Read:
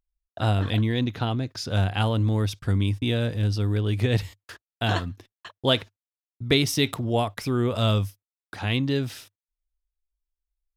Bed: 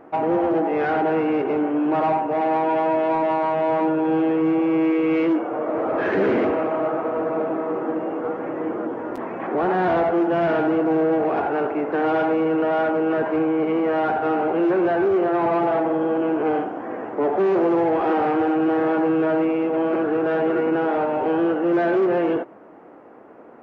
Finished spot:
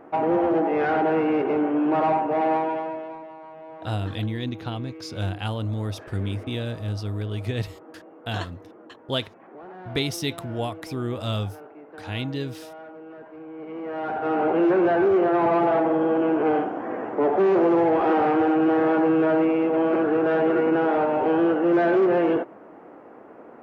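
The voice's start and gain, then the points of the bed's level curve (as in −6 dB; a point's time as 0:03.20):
3.45 s, −5.0 dB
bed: 0:02.52 −1 dB
0:03.31 −21 dB
0:13.37 −21 dB
0:14.45 0 dB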